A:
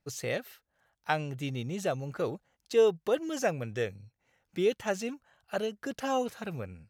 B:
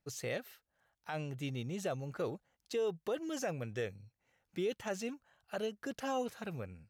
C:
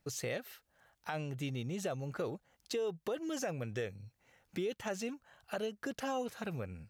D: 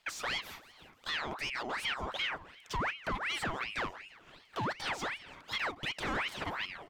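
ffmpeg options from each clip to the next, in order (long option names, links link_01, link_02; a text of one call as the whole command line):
ffmpeg -i in.wav -af "alimiter=limit=-23dB:level=0:latency=1:release=38,volume=-4.5dB" out.wav
ffmpeg -i in.wav -af "acompressor=threshold=-50dB:ratio=2,volume=8.5dB" out.wav
ffmpeg -i in.wav -filter_complex "[0:a]asplit=2[link_01][link_02];[link_02]highpass=frequency=720:poles=1,volume=22dB,asoftclip=type=tanh:threshold=-23.5dB[link_03];[link_01][link_03]amix=inputs=2:normalize=0,lowpass=frequency=2000:poles=1,volume=-6dB,aecho=1:1:167|334|501|668|835:0.112|0.0651|0.0377|0.0219|0.0127,aeval=exprs='val(0)*sin(2*PI*1600*n/s+1600*0.7/2.7*sin(2*PI*2.7*n/s))':channel_layout=same" out.wav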